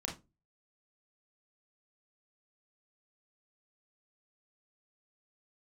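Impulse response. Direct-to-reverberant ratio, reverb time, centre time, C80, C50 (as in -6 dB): -0.5 dB, 0.25 s, 23 ms, 18.0 dB, 9.0 dB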